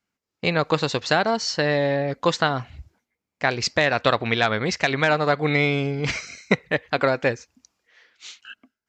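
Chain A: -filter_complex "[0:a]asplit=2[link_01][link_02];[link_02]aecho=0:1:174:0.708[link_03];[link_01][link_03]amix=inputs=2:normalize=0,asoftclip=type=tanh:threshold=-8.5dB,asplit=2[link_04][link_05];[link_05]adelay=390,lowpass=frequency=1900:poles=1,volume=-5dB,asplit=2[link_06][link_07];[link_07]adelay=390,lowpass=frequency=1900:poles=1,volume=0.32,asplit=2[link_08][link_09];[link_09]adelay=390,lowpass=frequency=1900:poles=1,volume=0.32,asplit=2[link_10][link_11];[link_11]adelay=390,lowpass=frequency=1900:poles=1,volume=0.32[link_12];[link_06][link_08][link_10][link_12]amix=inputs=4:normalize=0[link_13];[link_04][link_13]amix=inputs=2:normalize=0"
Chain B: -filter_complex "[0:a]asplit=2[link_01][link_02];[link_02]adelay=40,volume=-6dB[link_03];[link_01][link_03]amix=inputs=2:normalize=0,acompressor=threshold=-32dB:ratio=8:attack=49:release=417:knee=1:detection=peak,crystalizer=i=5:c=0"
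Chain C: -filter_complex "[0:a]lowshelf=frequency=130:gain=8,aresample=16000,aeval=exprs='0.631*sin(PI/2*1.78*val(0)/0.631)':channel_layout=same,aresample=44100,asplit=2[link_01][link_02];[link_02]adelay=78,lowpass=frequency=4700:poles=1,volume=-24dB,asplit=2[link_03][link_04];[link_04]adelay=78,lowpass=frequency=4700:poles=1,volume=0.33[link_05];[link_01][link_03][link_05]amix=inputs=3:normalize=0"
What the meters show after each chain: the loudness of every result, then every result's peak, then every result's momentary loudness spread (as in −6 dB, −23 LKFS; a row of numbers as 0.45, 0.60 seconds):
−21.0, −27.5, −14.0 LKFS; −6.5, −5.0, −2.5 dBFS; 13, 11, 10 LU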